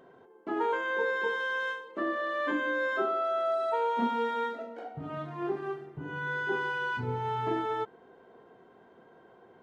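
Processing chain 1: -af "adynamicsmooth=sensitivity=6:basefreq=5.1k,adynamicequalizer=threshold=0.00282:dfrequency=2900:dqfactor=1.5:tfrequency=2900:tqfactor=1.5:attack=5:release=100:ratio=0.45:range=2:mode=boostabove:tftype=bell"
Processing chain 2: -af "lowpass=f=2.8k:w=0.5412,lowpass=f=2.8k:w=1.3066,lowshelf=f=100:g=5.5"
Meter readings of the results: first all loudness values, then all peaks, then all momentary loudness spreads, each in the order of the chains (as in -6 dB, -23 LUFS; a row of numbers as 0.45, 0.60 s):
-31.5, -31.5 LUFS; -16.5, -16.5 dBFS; 10, 10 LU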